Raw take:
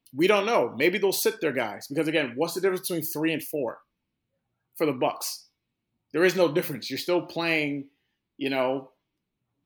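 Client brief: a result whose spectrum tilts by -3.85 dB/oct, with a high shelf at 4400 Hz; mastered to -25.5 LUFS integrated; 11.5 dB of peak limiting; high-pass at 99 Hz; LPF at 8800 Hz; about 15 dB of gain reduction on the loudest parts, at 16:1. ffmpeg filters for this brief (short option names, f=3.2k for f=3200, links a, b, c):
-af "highpass=99,lowpass=8.8k,highshelf=f=4.4k:g=8,acompressor=threshold=-30dB:ratio=16,volume=14.5dB,alimiter=limit=-15.5dB:level=0:latency=1"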